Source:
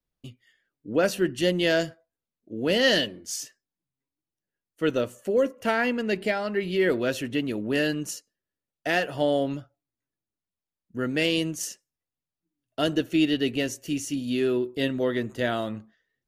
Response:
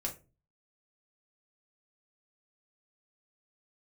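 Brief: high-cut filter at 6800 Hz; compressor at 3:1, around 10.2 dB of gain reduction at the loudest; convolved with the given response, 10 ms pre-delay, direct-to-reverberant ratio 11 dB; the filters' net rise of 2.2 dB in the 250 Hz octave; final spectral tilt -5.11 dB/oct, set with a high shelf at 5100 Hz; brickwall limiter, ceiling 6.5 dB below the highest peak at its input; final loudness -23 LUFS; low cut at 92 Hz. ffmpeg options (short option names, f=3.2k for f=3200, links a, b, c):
-filter_complex "[0:a]highpass=92,lowpass=6.8k,equalizer=f=250:t=o:g=3,highshelf=f=5.1k:g=-8,acompressor=threshold=-31dB:ratio=3,alimiter=level_in=1.5dB:limit=-24dB:level=0:latency=1,volume=-1.5dB,asplit=2[a][b];[1:a]atrim=start_sample=2205,adelay=10[c];[b][c]afir=irnorm=-1:irlink=0,volume=-12dB[d];[a][d]amix=inputs=2:normalize=0,volume=12.5dB"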